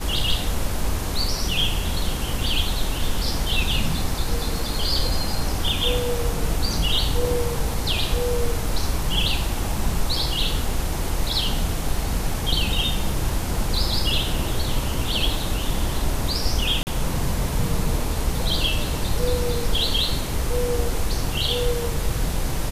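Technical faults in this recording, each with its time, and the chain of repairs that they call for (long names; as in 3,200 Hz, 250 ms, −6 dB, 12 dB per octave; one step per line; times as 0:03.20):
0:16.83–0:16.87: drop-out 39 ms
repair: repair the gap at 0:16.83, 39 ms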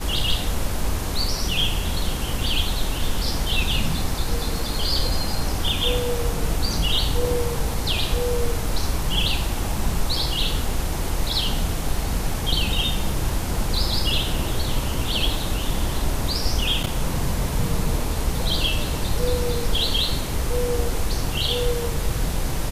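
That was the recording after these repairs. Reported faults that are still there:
none of them is left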